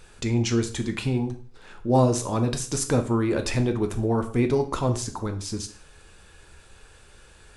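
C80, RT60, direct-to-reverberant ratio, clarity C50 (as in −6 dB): 16.5 dB, 0.45 s, 6.0 dB, 12.5 dB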